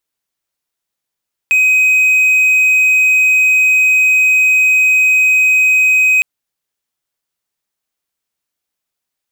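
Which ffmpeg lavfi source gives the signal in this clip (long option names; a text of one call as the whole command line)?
ffmpeg -f lavfi -i "aevalsrc='0.531*(1-4*abs(mod(2520*t+0.25,1)-0.5))':duration=4.71:sample_rate=44100" out.wav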